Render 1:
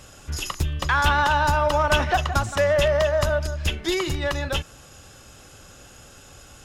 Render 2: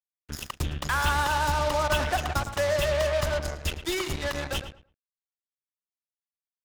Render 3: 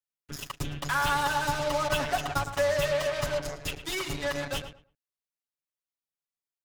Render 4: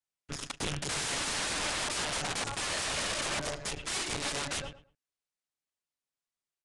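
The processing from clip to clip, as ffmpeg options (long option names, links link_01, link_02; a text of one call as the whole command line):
ffmpeg -i in.wav -filter_complex "[0:a]acrusher=bits=3:mix=0:aa=0.5,asplit=2[link_01][link_02];[link_02]adelay=110,lowpass=frequency=2700:poles=1,volume=-9.5dB,asplit=2[link_03][link_04];[link_04]adelay=110,lowpass=frequency=2700:poles=1,volume=0.2,asplit=2[link_05][link_06];[link_06]adelay=110,lowpass=frequency=2700:poles=1,volume=0.2[link_07];[link_03][link_05][link_07]amix=inputs=3:normalize=0[link_08];[link_01][link_08]amix=inputs=2:normalize=0,volume=-6dB" out.wav
ffmpeg -i in.wav -af "aecho=1:1:7.1:0.96,volume=-4.5dB" out.wav
ffmpeg -i in.wav -af "aeval=exprs='(mod(26.6*val(0)+1,2)-1)/26.6':channel_layout=same,aresample=22050,aresample=44100,volume=1dB" out.wav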